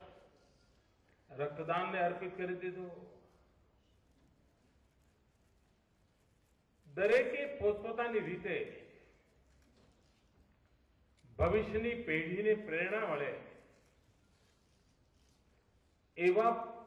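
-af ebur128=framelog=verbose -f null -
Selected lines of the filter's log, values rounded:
Integrated loudness:
  I:         -35.6 LUFS
  Threshold: -47.3 LUFS
Loudness range:
  LRA:        10.7 LU
  Threshold: -59.6 LUFS
  LRA low:   -47.6 LUFS
  LRA high:  -36.9 LUFS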